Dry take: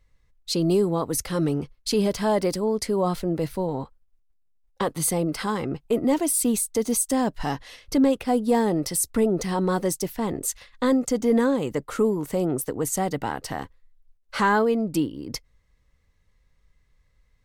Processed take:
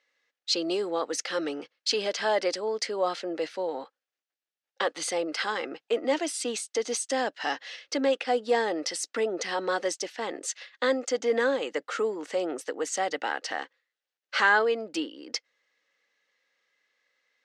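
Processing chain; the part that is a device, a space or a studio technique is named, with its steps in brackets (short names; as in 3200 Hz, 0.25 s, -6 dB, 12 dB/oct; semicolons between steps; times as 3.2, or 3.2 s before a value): phone speaker on a table (speaker cabinet 390–6400 Hz, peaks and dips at 400 Hz -8 dB, 660 Hz -4 dB, 1000 Hz -9 dB, 1700 Hz +4 dB, 2900 Hz +3 dB); gain +2.5 dB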